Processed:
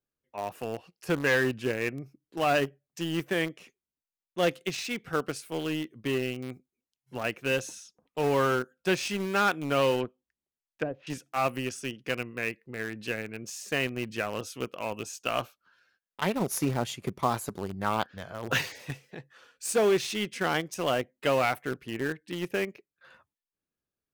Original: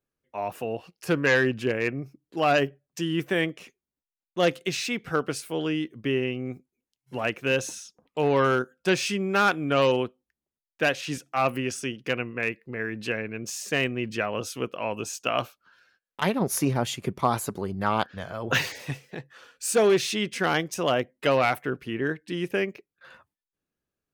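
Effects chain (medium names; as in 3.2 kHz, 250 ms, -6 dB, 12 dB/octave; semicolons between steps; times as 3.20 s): in parallel at -11 dB: bit crusher 4-bit; 10.00–11.07 s: on the sum: low-pass that closes with the level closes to 480 Hz, closed at -20 dBFS; trim -5.5 dB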